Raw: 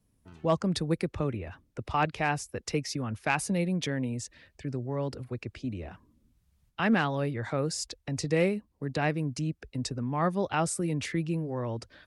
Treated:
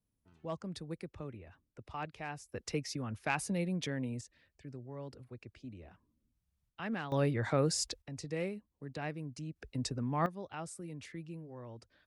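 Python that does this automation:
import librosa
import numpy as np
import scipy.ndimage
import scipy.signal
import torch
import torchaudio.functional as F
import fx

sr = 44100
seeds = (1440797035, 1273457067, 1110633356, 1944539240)

y = fx.gain(x, sr, db=fx.steps((0.0, -14.0), (2.52, -6.0), (4.21, -13.0), (7.12, 0.0), (8.02, -11.5), (9.56, -3.5), (10.26, -15.0)))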